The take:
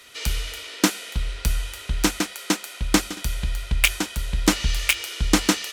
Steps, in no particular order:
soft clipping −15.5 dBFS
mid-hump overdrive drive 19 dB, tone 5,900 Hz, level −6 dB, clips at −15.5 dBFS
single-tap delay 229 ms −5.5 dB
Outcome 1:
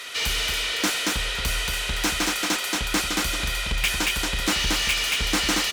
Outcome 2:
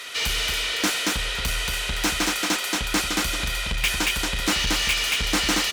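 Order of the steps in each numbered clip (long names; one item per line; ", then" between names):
single-tap delay, then mid-hump overdrive, then soft clipping
single-tap delay, then soft clipping, then mid-hump overdrive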